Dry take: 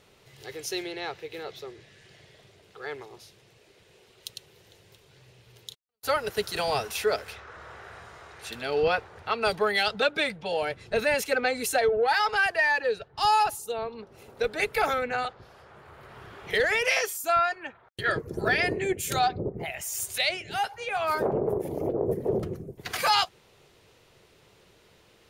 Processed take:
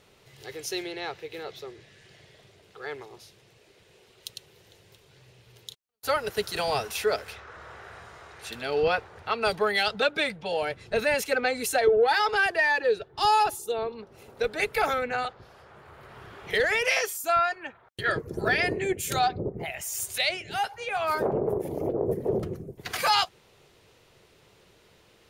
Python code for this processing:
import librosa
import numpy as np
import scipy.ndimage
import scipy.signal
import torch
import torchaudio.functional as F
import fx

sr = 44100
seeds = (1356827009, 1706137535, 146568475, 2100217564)

y = fx.small_body(x, sr, hz=(360.0, 3500.0), ring_ms=30, db=10, at=(11.87, 13.92))